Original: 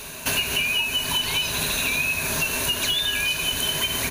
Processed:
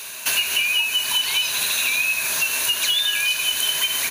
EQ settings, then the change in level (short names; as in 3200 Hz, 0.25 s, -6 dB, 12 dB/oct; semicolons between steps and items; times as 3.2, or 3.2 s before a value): tilt shelf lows -9 dB, about 640 Hz; low shelf 89 Hz -8 dB; -5.0 dB